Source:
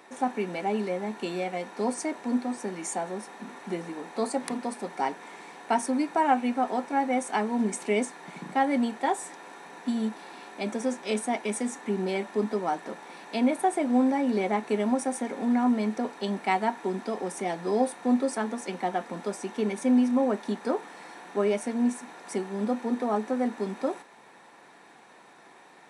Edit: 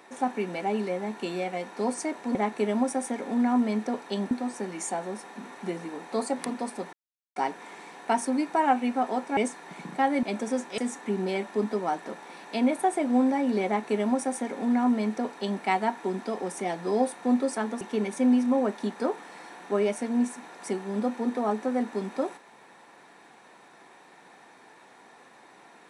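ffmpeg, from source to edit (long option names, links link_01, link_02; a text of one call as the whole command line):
ffmpeg -i in.wav -filter_complex "[0:a]asplit=8[link_01][link_02][link_03][link_04][link_05][link_06][link_07][link_08];[link_01]atrim=end=2.352[link_09];[link_02]atrim=start=14.458:end=16.422[link_10];[link_03]atrim=start=2.348:end=4.97,asetpts=PTS-STARTPTS,afade=type=out:start_time=2.618:duration=0.004:curve=hsin,apad=pad_dur=0.43[link_11];[link_04]atrim=start=4.97:end=6.982,asetpts=PTS-STARTPTS,afade=type=in:duration=0.004:curve=hsin[link_12];[link_05]atrim=start=7.938:end=8.802[link_13];[link_06]atrim=start=10.558:end=11.112[link_14];[link_07]atrim=start=11.578:end=18.612[link_15];[link_08]atrim=start=19.458[link_16];[link_09][link_10]acrossfade=duration=0.004:curve1=hsin:curve2=hsin[link_17];[link_11][link_12]concat=n=2:v=0:a=1[link_18];[link_17][link_18]acrossfade=duration=0.004:curve1=hsin:curve2=hsin[link_19];[link_19][link_13]acrossfade=duration=0.004:curve1=hsin:curve2=hsin[link_20];[link_20][link_14]acrossfade=duration=0.004:curve1=hsin:curve2=hsin[link_21];[link_21][link_15]acrossfade=duration=0.004:curve1=hsin:curve2=hsin[link_22];[link_22][link_16]acrossfade=duration=0.004:curve1=hsin:curve2=hsin" out.wav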